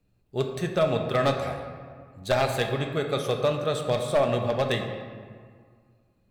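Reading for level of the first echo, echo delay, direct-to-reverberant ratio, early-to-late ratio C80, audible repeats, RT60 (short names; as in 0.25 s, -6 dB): none, none, 3.0 dB, 7.0 dB, none, 1.9 s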